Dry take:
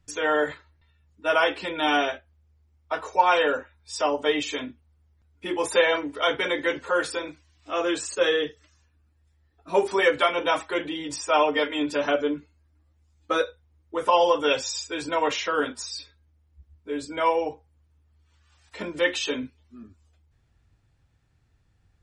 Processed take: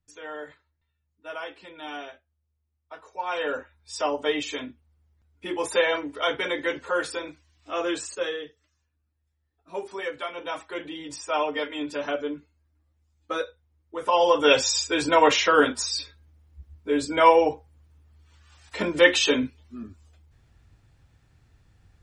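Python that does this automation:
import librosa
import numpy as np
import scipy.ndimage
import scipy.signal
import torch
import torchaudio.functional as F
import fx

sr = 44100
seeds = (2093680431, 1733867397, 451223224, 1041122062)

y = fx.gain(x, sr, db=fx.line((3.13, -14.5), (3.59, -2.0), (8.01, -2.0), (8.46, -11.5), (10.24, -11.5), (10.95, -5.0), (13.97, -5.0), (14.59, 6.5)))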